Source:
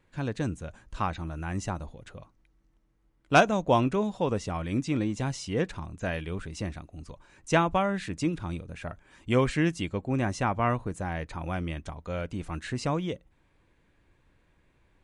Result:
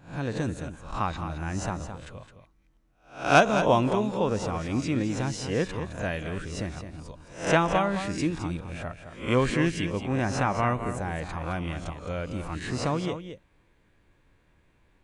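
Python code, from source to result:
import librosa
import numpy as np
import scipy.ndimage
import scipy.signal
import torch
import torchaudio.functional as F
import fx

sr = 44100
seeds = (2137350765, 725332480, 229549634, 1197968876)

p1 = fx.spec_swells(x, sr, rise_s=0.41)
y = p1 + fx.echo_single(p1, sr, ms=214, db=-9.5, dry=0)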